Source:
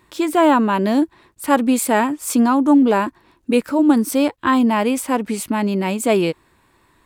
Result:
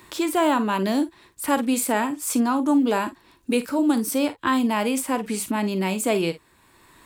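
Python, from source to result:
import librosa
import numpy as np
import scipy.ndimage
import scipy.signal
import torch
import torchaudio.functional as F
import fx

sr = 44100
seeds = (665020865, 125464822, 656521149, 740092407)

y = fx.high_shelf(x, sr, hz=3100.0, db=7.0)
y = fx.room_early_taps(y, sr, ms=(42, 53), db=(-14.5, -16.0))
y = fx.band_squash(y, sr, depth_pct=40)
y = y * librosa.db_to_amplitude(-6.5)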